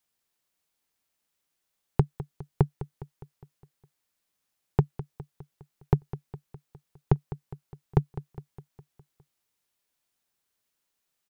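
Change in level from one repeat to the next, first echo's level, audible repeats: -5.0 dB, -14.5 dB, 5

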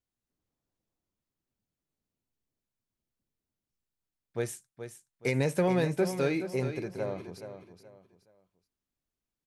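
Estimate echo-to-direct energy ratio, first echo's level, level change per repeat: -9.5 dB, -10.0 dB, -10.5 dB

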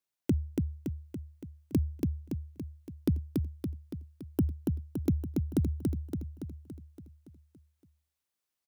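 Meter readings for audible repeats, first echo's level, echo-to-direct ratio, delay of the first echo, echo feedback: 7, -3.0 dB, -1.5 dB, 283 ms, 57%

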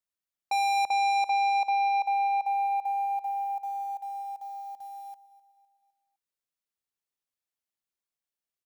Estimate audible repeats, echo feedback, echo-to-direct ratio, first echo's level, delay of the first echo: 3, 52%, -18.0 dB, -19.5 dB, 255 ms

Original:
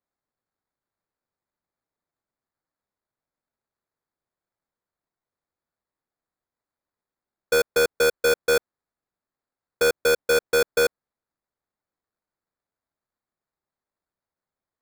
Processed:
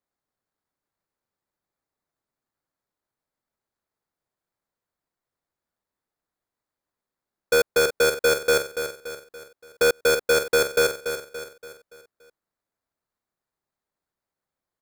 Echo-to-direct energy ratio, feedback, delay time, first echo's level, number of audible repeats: -7.5 dB, 45%, 286 ms, -8.5 dB, 4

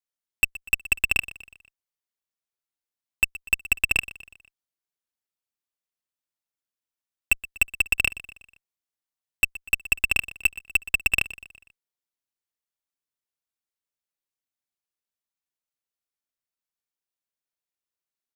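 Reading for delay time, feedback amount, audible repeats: 122 ms, 49%, 3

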